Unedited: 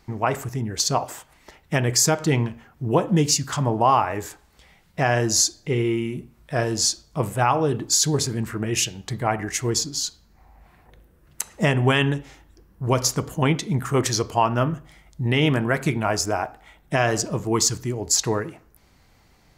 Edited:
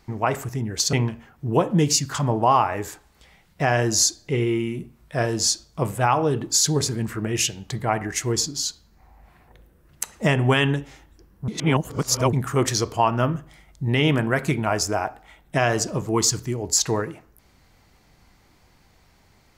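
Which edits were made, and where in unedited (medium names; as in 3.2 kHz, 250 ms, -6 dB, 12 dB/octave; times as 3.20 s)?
0.93–2.31 s: delete
12.86–13.71 s: reverse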